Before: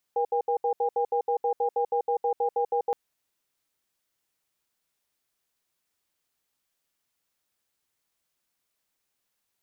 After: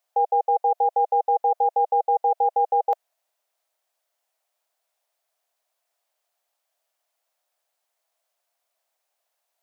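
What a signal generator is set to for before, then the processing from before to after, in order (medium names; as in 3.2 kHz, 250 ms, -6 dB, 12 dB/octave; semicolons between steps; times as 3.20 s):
cadence 478 Hz, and 807 Hz, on 0.09 s, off 0.07 s, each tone -25 dBFS 2.77 s
resonant high-pass 660 Hz, resonance Q 4.9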